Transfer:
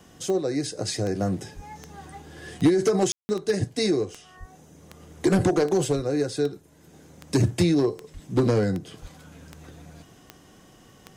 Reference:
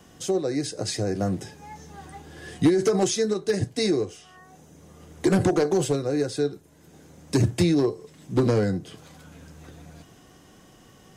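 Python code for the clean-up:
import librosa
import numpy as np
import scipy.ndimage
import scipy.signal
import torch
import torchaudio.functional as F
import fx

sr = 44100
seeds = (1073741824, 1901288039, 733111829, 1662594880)

y = fx.fix_declick_ar(x, sr, threshold=10.0)
y = fx.fix_deplosive(y, sr, at_s=(1.55, 4.39, 5.35, 5.95, 8.13, 9.01))
y = fx.fix_ambience(y, sr, seeds[0], print_start_s=6.58, print_end_s=7.08, start_s=3.12, end_s=3.29)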